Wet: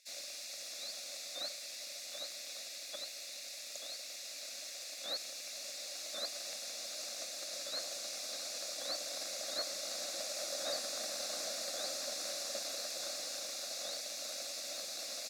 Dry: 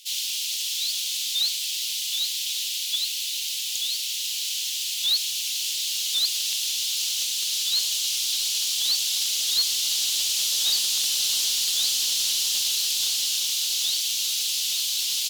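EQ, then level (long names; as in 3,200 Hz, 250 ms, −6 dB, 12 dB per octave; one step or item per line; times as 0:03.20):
resonant band-pass 580 Hz, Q 1.4
parametric band 570 Hz +8.5 dB 0.28 octaves
phaser with its sweep stopped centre 620 Hz, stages 8
+11.0 dB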